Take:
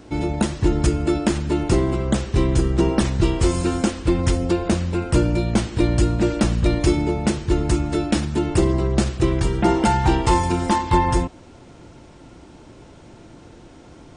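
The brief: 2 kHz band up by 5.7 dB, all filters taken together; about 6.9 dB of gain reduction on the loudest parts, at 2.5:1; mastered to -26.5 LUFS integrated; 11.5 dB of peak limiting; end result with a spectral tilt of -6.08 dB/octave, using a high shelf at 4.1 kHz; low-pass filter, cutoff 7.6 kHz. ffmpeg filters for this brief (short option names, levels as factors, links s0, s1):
-af "lowpass=7600,equalizer=f=2000:t=o:g=8,highshelf=f=4100:g=-4,acompressor=threshold=0.0708:ratio=2.5,volume=1.26,alimiter=limit=0.141:level=0:latency=1"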